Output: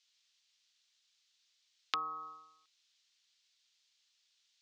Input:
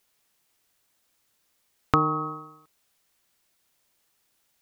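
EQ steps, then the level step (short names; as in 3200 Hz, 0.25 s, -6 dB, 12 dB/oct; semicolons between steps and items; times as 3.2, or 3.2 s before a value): Butterworth band-pass 5000 Hz, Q 1.3; air absorption 70 m; tilt -4 dB/oct; +14.5 dB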